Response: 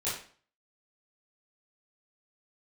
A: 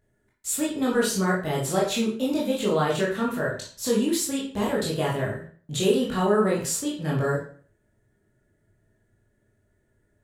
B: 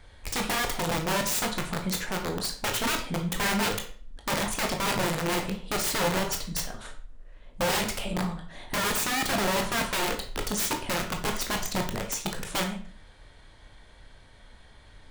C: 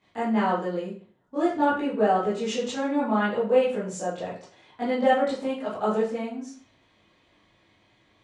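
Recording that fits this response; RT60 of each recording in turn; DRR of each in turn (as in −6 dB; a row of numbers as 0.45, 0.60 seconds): C; 0.45, 0.45, 0.45 seconds; −5.0, 3.0, −11.5 decibels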